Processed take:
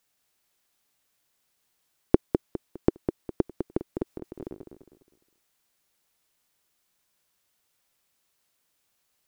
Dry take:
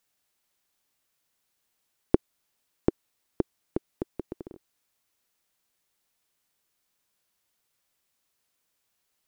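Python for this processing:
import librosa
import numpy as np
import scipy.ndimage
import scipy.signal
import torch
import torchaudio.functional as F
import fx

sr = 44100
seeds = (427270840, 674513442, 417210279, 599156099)

y = fx.echo_feedback(x, sr, ms=204, feedback_pct=35, wet_db=-6.5)
y = fx.over_compress(y, sr, threshold_db=-39.0, ratio=-0.5, at=(4.06, 4.5))
y = y * 10.0 ** (2.0 / 20.0)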